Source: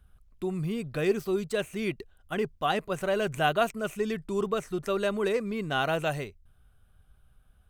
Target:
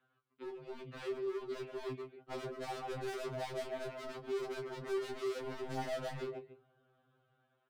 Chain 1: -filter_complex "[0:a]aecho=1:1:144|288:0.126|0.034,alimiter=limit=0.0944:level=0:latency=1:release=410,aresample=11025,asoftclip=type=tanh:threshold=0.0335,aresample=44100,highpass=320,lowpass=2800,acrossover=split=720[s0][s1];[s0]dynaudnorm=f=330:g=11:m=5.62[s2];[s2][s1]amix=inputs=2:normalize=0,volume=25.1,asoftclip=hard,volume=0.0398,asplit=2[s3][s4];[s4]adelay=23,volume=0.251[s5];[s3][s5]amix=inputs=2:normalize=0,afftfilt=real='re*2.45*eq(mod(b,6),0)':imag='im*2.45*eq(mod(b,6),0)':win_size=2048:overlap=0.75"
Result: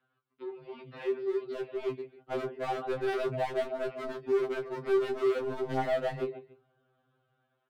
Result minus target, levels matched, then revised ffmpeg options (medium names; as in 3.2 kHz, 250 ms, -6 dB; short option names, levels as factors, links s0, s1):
overload inside the chain: distortion -5 dB
-filter_complex "[0:a]aecho=1:1:144|288:0.126|0.034,alimiter=limit=0.0944:level=0:latency=1:release=410,aresample=11025,asoftclip=type=tanh:threshold=0.0335,aresample=44100,highpass=320,lowpass=2800,acrossover=split=720[s0][s1];[s0]dynaudnorm=f=330:g=11:m=5.62[s2];[s2][s1]amix=inputs=2:normalize=0,volume=84.1,asoftclip=hard,volume=0.0119,asplit=2[s3][s4];[s4]adelay=23,volume=0.251[s5];[s3][s5]amix=inputs=2:normalize=0,afftfilt=real='re*2.45*eq(mod(b,6),0)':imag='im*2.45*eq(mod(b,6),0)':win_size=2048:overlap=0.75"